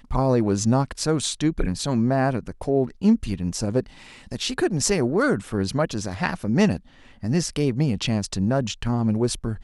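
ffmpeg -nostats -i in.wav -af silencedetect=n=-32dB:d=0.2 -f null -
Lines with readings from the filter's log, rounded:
silence_start: 3.86
silence_end: 4.32 | silence_duration: 0.45
silence_start: 6.77
silence_end: 7.23 | silence_duration: 0.47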